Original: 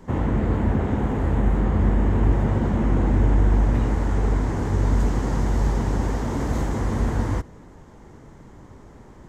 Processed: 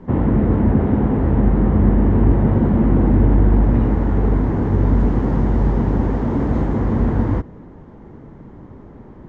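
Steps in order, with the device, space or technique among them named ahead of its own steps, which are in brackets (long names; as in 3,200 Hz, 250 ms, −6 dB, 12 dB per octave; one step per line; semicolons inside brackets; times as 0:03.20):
phone in a pocket (low-pass filter 3,600 Hz 12 dB per octave; parametric band 230 Hz +5.5 dB 2.1 octaves; high-shelf EQ 2,200 Hz −8.5 dB)
level +3 dB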